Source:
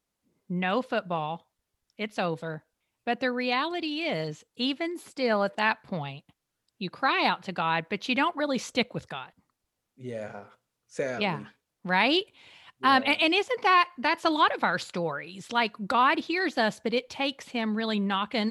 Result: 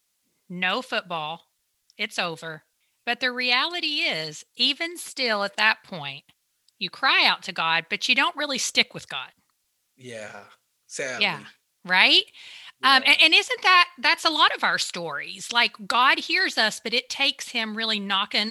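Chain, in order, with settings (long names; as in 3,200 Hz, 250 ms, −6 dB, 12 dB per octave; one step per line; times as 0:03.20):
tilt shelving filter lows −9.5 dB, about 1,400 Hz
level +4.5 dB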